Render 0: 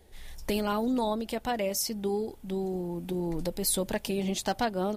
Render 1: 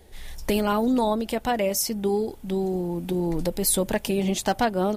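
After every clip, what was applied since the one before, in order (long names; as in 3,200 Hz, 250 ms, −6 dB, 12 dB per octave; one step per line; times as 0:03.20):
dynamic equaliser 4,400 Hz, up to −4 dB, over −48 dBFS, Q 1.7
level +6 dB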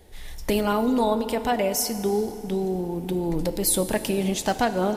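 feedback delay network reverb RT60 3.2 s, high-frequency decay 0.7×, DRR 9.5 dB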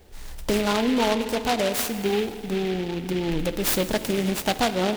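short delay modulated by noise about 2,400 Hz, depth 0.097 ms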